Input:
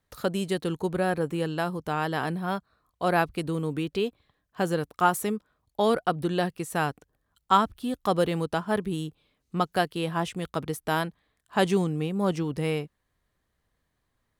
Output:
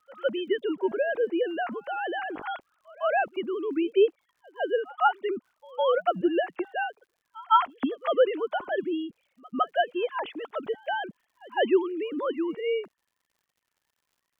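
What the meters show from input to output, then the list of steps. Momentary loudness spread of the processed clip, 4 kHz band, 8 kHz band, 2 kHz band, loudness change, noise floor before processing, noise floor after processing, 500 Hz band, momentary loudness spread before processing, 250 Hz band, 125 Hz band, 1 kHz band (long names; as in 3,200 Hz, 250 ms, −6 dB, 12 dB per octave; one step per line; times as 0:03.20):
11 LU, −2.5 dB, below −30 dB, 0.0 dB, 0.0 dB, −77 dBFS, −81 dBFS, +2.5 dB, 8 LU, −2.5 dB, −22.5 dB, 0.0 dB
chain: three sine waves on the formant tracks
surface crackle 120 per second −58 dBFS
echo ahead of the sound 158 ms −24 dB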